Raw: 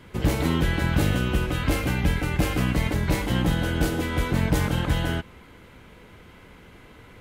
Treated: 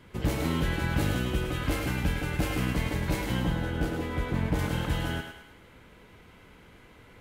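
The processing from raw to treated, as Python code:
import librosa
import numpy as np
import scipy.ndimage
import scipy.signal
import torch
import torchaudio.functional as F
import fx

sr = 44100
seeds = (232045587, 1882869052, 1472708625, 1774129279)

y = fx.high_shelf(x, sr, hz=3100.0, db=-10.0, at=(3.39, 4.59))
y = fx.echo_thinned(y, sr, ms=105, feedback_pct=48, hz=460.0, wet_db=-5.5)
y = y * librosa.db_to_amplitude(-5.5)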